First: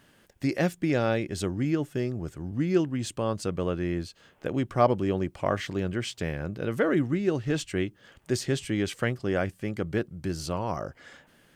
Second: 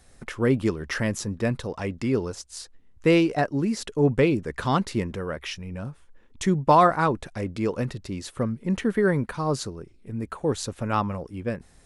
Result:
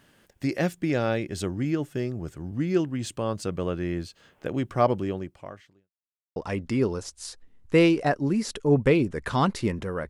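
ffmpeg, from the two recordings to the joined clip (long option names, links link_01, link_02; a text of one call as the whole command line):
ffmpeg -i cue0.wav -i cue1.wav -filter_complex "[0:a]apad=whole_dur=10.09,atrim=end=10.09,asplit=2[link_01][link_02];[link_01]atrim=end=5.91,asetpts=PTS-STARTPTS,afade=type=out:start_time=4.96:duration=0.95:curve=qua[link_03];[link_02]atrim=start=5.91:end=6.36,asetpts=PTS-STARTPTS,volume=0[link_04];[1:a]atrim=start=1.68:end=5.41,asetpts=PTS-STARTPTS,afade=type=in:duration=0.004:curve=hsin[link_05];[link_03][link_04][link_05]concat=n=3:v=0:a=1" out.wav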